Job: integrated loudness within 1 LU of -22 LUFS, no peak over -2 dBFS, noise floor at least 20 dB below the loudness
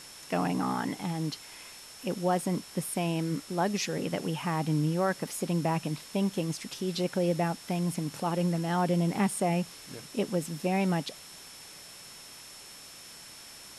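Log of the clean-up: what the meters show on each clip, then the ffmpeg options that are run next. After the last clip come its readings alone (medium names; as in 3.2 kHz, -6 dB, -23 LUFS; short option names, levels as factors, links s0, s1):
steady tone 5.4 kHz; tone level -51 dBFS; noise floor -48 dBFS; noise floor target -51 dBFS; loudness -30.5 LUFS; peak level -15.5 dBFS; loudness target -22.0 LUFS
-> -af "bandreject=f=5400:w=30"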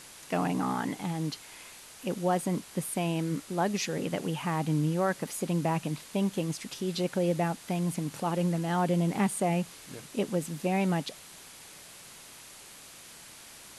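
steady tone not found; noise floor -50 dBFS; noise floor target -51 dBFS
-> -af "afftdn=nr=6:nf=-50"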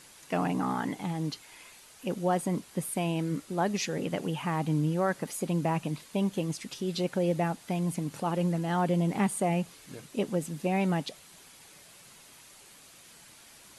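noise floor -54 dBFS; loudness -31.0 LUFS; peak level -16.0 dBFS; loudness target -22.0 LUFS
-> -af "volume=2.82"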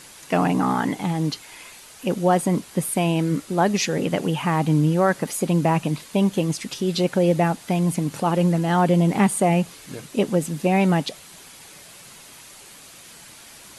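loudness -21.5 LUFS; peak level -7.0 dBFS; noise floor -45 dBFS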